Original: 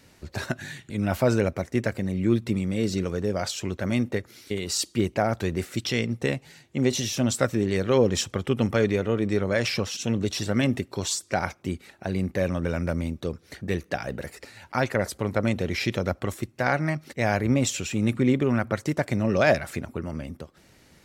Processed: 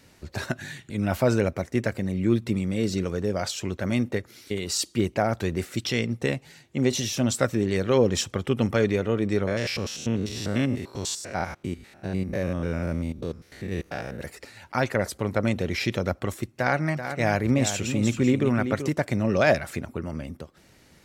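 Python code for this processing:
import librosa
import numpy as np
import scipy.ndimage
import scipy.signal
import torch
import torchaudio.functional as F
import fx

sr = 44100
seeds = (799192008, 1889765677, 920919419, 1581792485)

y = fx.spec_steps(x, sr, hold_ms=100, at=(9.46, 14.19), fade=0.02)
y = fx.echo_single(y, sr, ms=384, db=-9.0, at=(16.56, 18.89))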